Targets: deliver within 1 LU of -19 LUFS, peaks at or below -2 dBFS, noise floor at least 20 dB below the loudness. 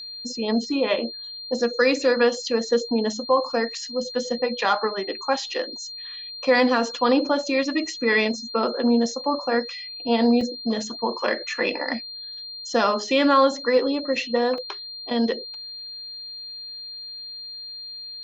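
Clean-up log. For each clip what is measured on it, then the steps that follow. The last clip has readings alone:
dropouts 2; longest dropout 2.2 ms; steady tone 4200 Hz; tone level -34 dBFS; loudness -24.0 LUFS; peak -6.5 dBFS; loudness target -19.0 LUFS
-> interpolate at 10.41/14.58, 2.2 ms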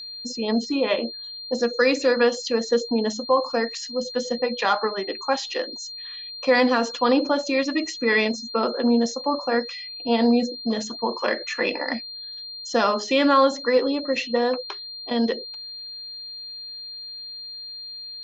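dropouts 0; steady tone 4200 Hz; tone level -34 dBFS
-> notch 4200 Hz, Q 30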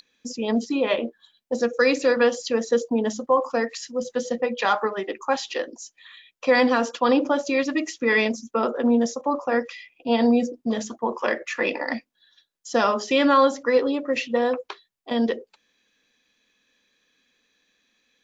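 steady tone none; loudness -23.0 LUFS; peak -6.5 dBFS; loudness target -19.0 LUFS
-> gain +4 dB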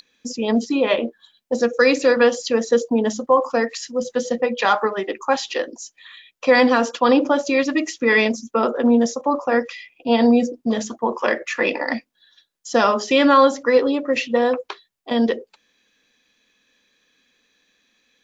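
loudness -19.5 LUFS; peak -2.5 dBFS; noise floor -69 dBFS

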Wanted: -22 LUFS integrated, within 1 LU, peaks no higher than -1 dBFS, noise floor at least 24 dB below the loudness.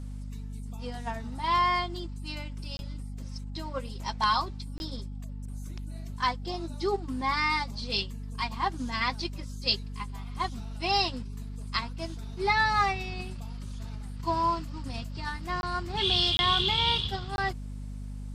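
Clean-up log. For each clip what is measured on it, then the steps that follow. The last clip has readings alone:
dropouts 5; longest dropout 21 ms; hum 50 Hz; harmonics up to 250 Hz; hum level -35 dBFS; loudness -29.5 LUFS; peak -12.5 dBFS; loudness target -22.0 LUFS
-> interpolate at 2.77/4.78/15.61/16.37/17.36, 21 ms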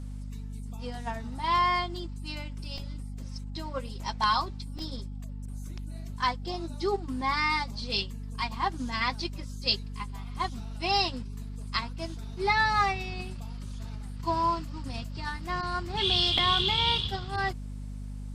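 dropouts 0; hum 50 Hz; harmonics up to 250 Hz; hum level -35 dBFS
-> de-hum 50 Hz, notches 5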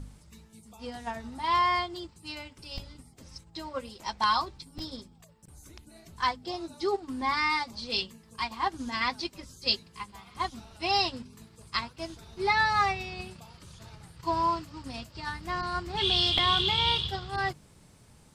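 hum none; loudness -29.0 LUFS; peak -10.5 dBFS; loudness target -22.0 LUFS
-> gain +7 dB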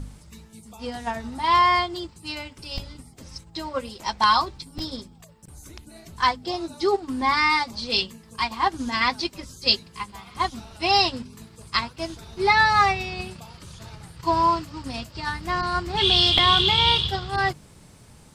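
loudness -22.0 LUFS; peak -3.5 dBFS; noise floor -50 dBFS

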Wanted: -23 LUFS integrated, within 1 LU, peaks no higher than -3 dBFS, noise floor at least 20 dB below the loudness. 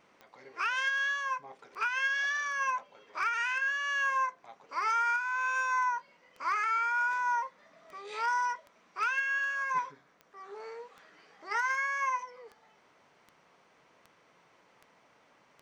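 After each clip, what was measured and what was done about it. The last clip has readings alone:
clicks 21; loudness -31.0 LUFS; peak -22.5 dBFS; loudness target -23.0 LUFS
-> de-click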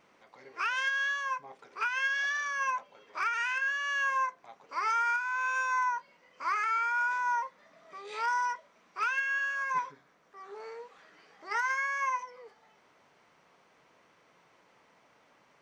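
clicks 0; loudness -31.0 LUFS; peak -20.5 dBFS; loudness target -23.0 LUFS
-> gain +8 dB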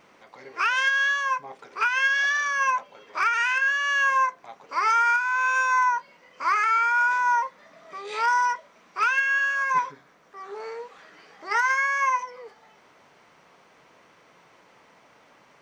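loudness -23.0 LUFS; peak -12.5 dBFS; noise floor -57 dBFS

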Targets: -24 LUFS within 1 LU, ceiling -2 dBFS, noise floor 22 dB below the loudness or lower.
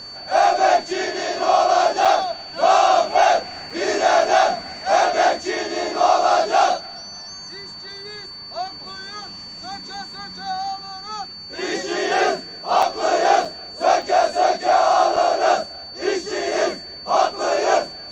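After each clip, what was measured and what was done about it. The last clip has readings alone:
dropouts 6; longest dropout 4.6 ms; steady tone 4500 Hz; tone level -34 dBFS; loudness -19.0 LUFS; peak -3.5 dBFS; loudness target -24.0 LUFS
-> interpolate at 2.05/3.7/12.82/13.45/14.02/15.16, 4.6 ms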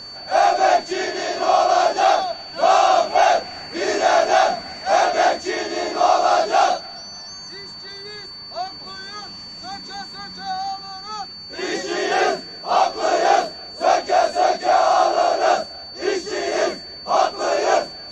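dropouts 0; steady tone 4500 Hz; tone level -34 dBFS
-> notch 4500 Hz, Q 30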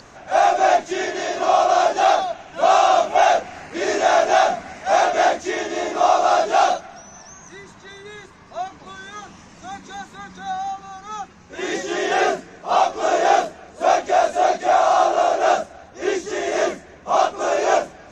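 steady tone none; loudness -19.0 LUFS; peak -4.0 dBFS; loudness target -24.0 LUFS
-> gain -5 dB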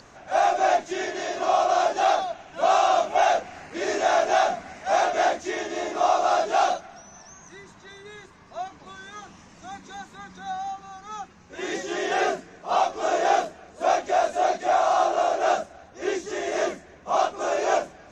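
loudness -24.0 LUFS; peak -9.0 dBFS; noise floor -50 dBFS

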